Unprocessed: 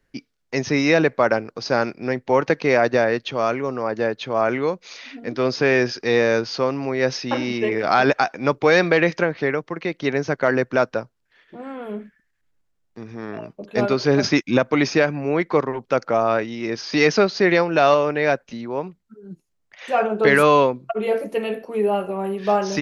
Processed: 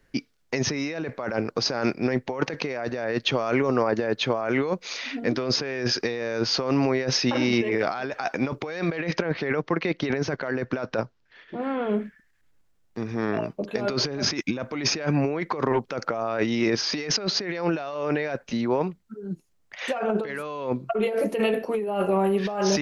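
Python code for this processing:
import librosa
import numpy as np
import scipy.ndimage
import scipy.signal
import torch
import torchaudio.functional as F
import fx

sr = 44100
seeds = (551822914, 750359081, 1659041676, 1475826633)

y = fx.lowpass(x, sr, hz=5900.0, slope=24, at=(8.96, 11.93))
y = fx.over_compress(y, sr, threshold_db=-26.0, ratio=-1.0)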